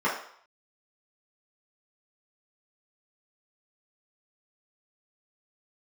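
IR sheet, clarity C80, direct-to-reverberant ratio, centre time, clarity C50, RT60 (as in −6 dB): 9.5 dB, −7.5 dB, 33 ms, 5.5 dB, 0.60 s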